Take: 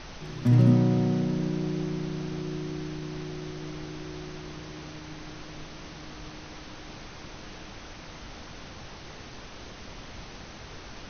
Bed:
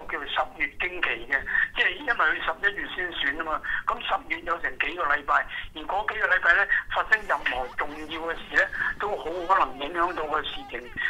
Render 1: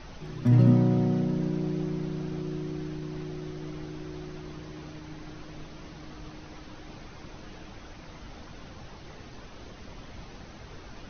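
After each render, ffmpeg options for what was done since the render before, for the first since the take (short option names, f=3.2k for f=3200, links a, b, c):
-af "afftdn=nr=7:nf=-44"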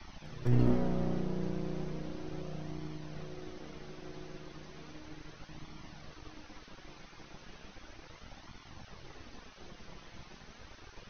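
-filter_complex "[0:a]acrossover=split=1000[a][b];[a]aeval=exprs='max(val(0),0)':c=same[c];[c][b]amix=inputs=2:normalize=0,flanger=delay=0.9:depth=5.1:regen=-41:speed=0.35:shape=sinusoidal"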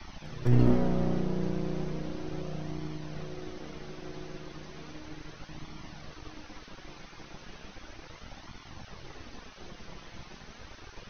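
-af "volume=4.5dB"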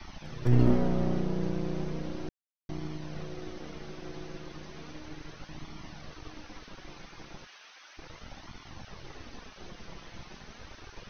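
-filter_complex "[0:a]asplit=3[a][b][c];[a]afade=t=out:st=7.45:d=0.02[d];[b]highpass=1.1k,afade=t=in:st=7.45:d=0.02,afade=t=out:st=7.97:d=0.02[e];[c]afade=t=in:st=7.97:d=0.02[f];[d][e][f]amix=inputs=3:normalize=0,asplit=3[g][h][i];[g]atrim=end=2.29,asetpts=PTS-STARTPTS,afade=t=out:st=2.286:d=0.004:c=hsin[j];[h]atrim=start=2.29:end=2.69,asetpts=PTS-STARTPTS,volume=0[k];[i]atrim=start=2.69,asetpts=PTS-STARTPTS,afade=t=in:d=0.004:c=hsin[l];[j][k][l]concat=n=3:v=0:a=1"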